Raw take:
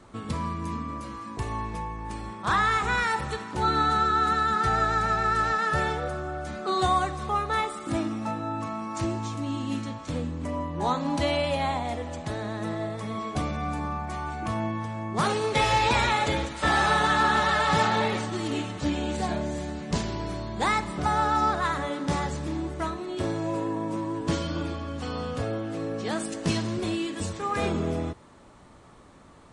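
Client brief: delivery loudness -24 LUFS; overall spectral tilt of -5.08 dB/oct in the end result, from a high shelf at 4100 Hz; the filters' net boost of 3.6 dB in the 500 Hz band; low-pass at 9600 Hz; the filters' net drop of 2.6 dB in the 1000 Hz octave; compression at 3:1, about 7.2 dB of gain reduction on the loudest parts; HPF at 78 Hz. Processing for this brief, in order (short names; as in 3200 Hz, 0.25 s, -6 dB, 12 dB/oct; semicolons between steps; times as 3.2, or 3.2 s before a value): HPF 78 Hz; LPF 9600 Hz; bell 500 Hz +6 dB; bell 1000 Hz -5.5 dB; high shelf 4100 Hz +3.5 dB; compressor 3:1, threshold -29 dBFS; gain +8 dB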